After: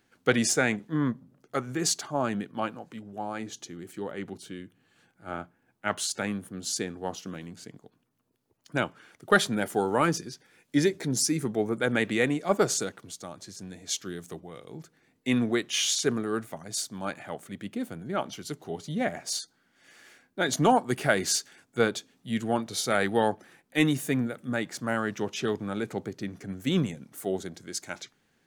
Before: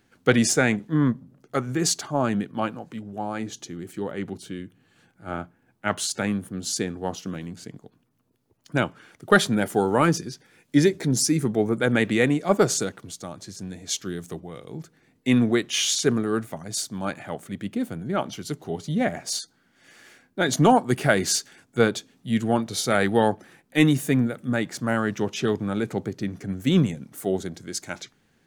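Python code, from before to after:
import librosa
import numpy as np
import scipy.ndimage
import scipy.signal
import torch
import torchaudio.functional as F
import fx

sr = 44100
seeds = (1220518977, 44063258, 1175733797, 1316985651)

y = fx.low_shelf(x, sr, hz=250.0, db=-6.0)
y = y * 10.0 ** (-3.0 / 20.0)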